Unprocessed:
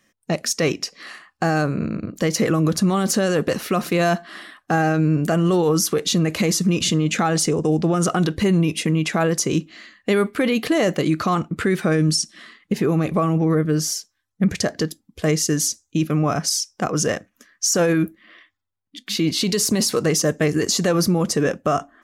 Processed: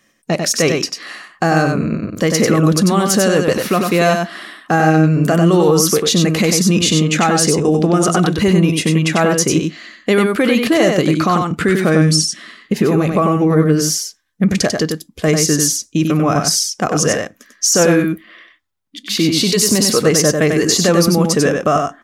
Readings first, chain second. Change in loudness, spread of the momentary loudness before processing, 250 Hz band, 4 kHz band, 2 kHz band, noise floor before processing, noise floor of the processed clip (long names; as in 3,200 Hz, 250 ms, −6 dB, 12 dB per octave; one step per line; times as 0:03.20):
+6.0 dB, 7 LU, +6.0 dB, +7.0 dB, +6.5 dB, −74 dBFS, −55 dBFS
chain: low-shelf EQ 160 Hz −3 dB
on a send: single-tap delay 95 ms −4.5 dB
on the sum: level +5.5 dB